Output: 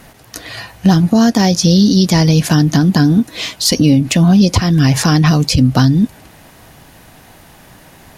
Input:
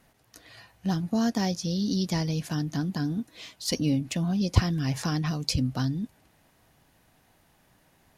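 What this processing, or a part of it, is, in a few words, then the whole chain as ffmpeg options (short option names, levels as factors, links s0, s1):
loud club master: -af "acompressor=threshold=0.0355:ratio=2.5,asoftclip=type=hard:threshold=0.188,alimiter=level_in=13.3:limit=0.891:release=50:level=0:latency=1,volume=0.891"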